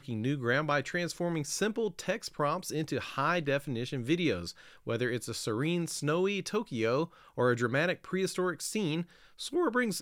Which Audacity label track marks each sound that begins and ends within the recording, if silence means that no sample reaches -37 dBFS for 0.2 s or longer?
4.870000	7.050000	sound
7.380000	9.020000	sound